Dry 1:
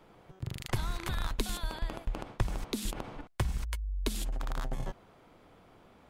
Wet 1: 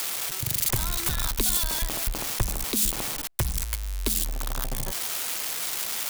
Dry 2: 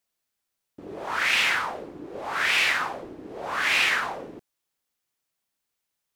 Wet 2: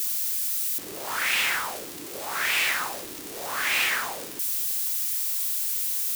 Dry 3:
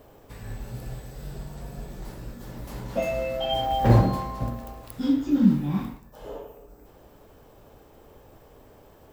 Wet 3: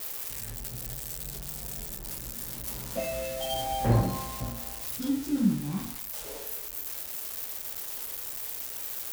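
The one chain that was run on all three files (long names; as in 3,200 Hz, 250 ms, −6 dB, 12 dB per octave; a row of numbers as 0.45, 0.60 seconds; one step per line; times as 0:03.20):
spike at every zero crossing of −20 dBFS
normalise the peak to −12 dBFS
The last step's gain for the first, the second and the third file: +3.5, −3.0, −6.0 decibels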